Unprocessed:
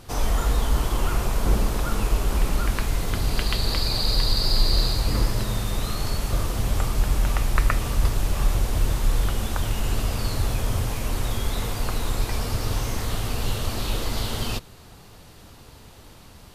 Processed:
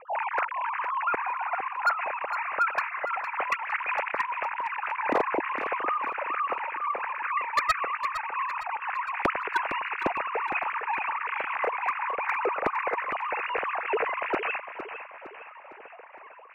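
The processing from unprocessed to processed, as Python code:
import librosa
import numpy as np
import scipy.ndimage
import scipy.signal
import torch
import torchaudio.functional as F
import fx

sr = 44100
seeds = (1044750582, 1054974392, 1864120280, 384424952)

p1 = fx.sine_speech(x, sr)
p2 = scipy.signal.sosfilt(scipy.signal.butter(16, 2600.0, 'lowpass', fs=sr, output='sos'), p1)
p3 = fx.rider(p2, sr, range_db=10, speed_s=2.0)
p4 = np.clip(p3, -10.0 ** (-9.5 / 20.0), 10.0 ** (-9.5 / 20.0))
p5 = p4 + fx.echo_feedback(p4, sr, ms=459, feedback_pct=47, wet_db=-10.5, dry=0)
y = p5 * 10.0 ** (-8.0 / 20.0)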